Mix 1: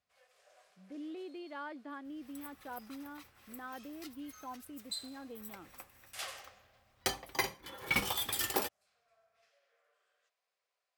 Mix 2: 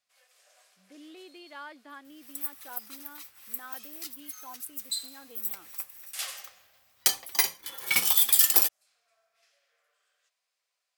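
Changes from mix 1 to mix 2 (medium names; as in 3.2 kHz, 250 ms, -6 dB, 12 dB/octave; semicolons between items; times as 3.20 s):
second sound: add tone controls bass +3 dB, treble +4 dB; master: add tilt EQ +3.5 dB/octave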